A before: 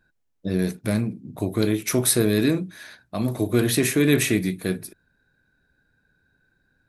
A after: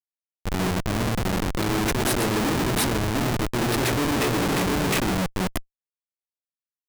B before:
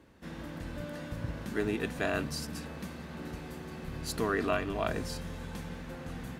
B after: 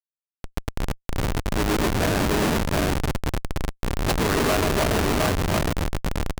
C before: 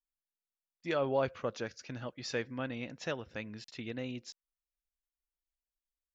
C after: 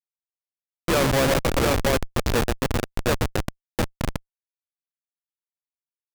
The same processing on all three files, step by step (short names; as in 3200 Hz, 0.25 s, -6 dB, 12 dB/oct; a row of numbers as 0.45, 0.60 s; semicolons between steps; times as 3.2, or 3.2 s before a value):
on a send: tapped delay 0.127/0.287/0.393/0.712 s -5/-13/-9.5/-3.5 dB; on the sum: reverse; compressor 16:1, threshold -27 dBFS; reverse; notches 50/100/150/200/250/300/350/400/450 Hz; bit-crush 8-bit; Schmitt trigger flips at -32.5 dBFS; low shelf 290 Hz -5 dB; match loudness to -24 LUFS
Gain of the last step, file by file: +13.0, +17.0, +21.0 dB